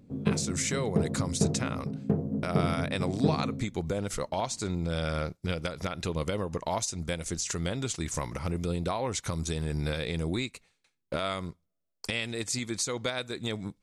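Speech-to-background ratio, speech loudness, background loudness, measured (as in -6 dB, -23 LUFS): -1.0 dB, -32.5 LUFS, -31.5 LUFS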